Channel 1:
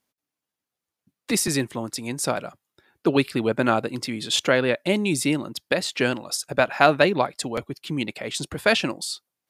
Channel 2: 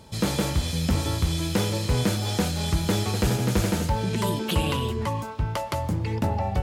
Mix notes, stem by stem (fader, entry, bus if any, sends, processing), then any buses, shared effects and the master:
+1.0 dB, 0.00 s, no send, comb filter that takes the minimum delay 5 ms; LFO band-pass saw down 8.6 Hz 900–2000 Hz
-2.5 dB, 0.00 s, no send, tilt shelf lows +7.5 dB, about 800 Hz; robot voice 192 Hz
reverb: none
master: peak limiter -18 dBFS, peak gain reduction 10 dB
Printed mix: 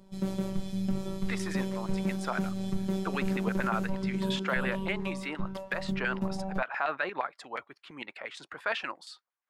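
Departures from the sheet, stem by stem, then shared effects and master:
stem 1: missing comb filter that takes the minimum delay 5 ms; stem 2 -2.5 dB -> -9.0 dB

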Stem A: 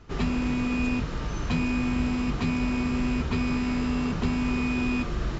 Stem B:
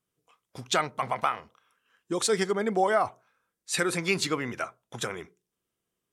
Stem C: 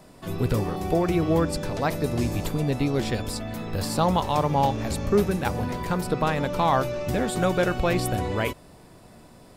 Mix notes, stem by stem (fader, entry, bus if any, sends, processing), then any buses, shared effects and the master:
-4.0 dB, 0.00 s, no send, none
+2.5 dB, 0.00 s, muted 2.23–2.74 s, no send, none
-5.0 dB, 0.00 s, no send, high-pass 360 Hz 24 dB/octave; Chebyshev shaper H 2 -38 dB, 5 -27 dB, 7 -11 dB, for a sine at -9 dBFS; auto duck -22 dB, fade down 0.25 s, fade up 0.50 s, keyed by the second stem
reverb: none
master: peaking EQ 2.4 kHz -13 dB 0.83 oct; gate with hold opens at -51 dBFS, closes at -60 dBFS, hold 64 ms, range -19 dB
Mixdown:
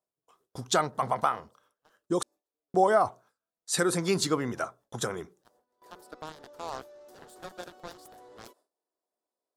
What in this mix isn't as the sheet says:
stem A: muted; stem C -5.0 dB -> -15.0 dB

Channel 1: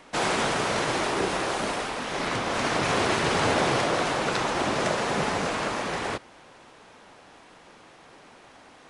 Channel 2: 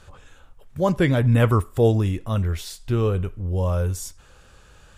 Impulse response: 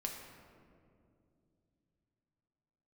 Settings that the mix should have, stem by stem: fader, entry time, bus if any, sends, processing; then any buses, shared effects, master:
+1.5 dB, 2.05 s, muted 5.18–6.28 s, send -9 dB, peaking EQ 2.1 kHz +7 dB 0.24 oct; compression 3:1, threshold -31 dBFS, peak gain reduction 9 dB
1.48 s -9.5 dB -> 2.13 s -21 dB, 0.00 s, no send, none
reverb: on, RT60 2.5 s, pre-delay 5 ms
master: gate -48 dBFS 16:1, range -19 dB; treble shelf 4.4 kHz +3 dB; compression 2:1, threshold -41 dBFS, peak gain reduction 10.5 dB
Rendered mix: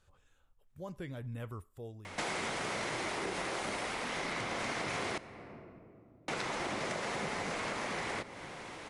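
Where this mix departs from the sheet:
stem 2 -9.5 dB -> -21.0 dB; master: missing gate -48 dBFS 16:1, range -19 dB

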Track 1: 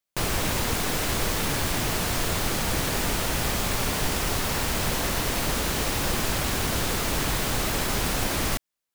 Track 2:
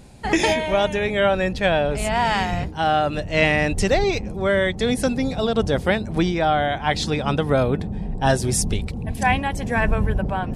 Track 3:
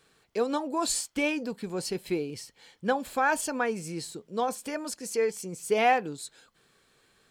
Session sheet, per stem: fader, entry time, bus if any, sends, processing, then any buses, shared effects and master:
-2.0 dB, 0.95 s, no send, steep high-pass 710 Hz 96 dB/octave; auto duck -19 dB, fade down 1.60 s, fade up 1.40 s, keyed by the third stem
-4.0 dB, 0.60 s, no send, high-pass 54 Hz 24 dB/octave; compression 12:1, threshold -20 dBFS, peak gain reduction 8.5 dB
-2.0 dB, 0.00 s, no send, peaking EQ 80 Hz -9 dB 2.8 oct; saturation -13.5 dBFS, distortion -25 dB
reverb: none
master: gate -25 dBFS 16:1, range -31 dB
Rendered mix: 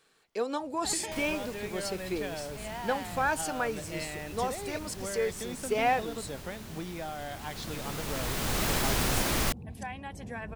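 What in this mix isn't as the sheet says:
stem 1: missing steep high-pass 710 Hz 96 dB/octave; stem 2 -4.0 dB -> -14.5 dB; master: missing gate -25 dBFS 16:1, range -31 dB

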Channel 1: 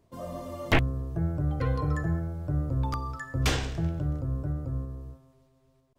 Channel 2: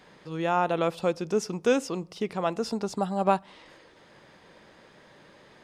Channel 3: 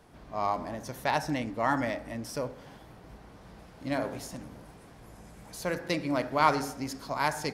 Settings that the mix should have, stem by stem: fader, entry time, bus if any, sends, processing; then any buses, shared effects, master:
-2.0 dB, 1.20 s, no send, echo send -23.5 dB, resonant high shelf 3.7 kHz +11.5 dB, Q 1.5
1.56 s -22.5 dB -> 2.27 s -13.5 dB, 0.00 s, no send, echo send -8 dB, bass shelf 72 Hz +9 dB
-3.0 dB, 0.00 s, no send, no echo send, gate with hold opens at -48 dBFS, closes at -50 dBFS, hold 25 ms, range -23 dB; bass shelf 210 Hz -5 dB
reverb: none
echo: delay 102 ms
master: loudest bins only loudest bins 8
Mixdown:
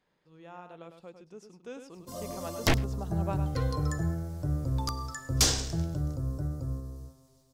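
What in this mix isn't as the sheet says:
stem 1: entry 1.20 s -> 1.95 s; stem 3: muted; master: missing loudest bins only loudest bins 8

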